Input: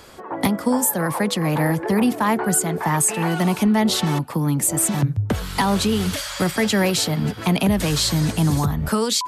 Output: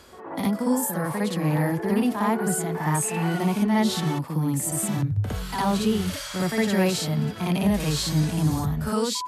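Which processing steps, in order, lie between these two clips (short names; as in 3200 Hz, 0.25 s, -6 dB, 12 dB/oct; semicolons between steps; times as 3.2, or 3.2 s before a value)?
reverse echo 59 ms -4.5 dB; harmonic-percussive split percussive -9 dB; gain -4 dB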